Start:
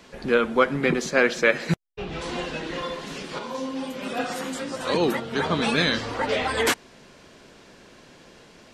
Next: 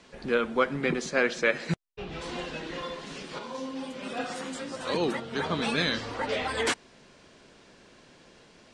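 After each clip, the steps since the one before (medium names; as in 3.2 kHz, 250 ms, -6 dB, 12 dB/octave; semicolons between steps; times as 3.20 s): Chebyshev low-pass 9.5 kHz, order 4; trim -4.5 dB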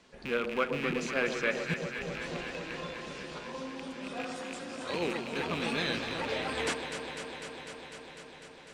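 rattle on loud lows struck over -38 dBFS, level -21 dBFS; echo whose repeats swap between lows and highs 125 ms, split 1 kHz, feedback 89%, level -6.5 dB; trim -6 dB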